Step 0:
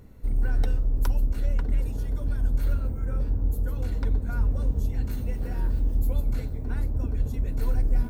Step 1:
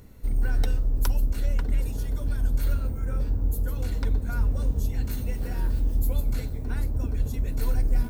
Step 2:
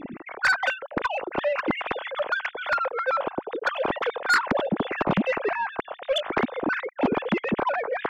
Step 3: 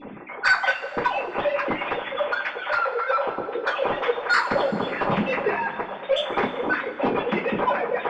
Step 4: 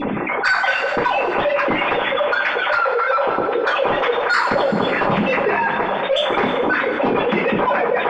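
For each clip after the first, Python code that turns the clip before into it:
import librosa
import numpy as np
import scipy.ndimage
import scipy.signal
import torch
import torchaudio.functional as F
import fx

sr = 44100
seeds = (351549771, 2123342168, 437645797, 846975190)

y1 = fx.high_shelf(x, sr, hz=2400.0, db=8.0)
y2 = fx.sine_speech(y1, sr)
y2 = 10.0 ** (-16.5 / 20.0) * np.tanh(y2 / 10.0 ** (-16.5 / 20.0))
y3 = scipy.signal.sosfilt(scipy.signal.butter(2, 5900.0, 'lowpass', fs=sr, output='sos'), y2)
y3 = fx.rev_double_slope(y3, sr, seeds[0], early_s=0.23, late_s=2.7, knee_db=-20, drr_db=-8.0)
y3 = y3 * 10.0 ** (-6.5 / 20.0)
y4 = fx.env_flatten(y3, sr, amount_pct=70)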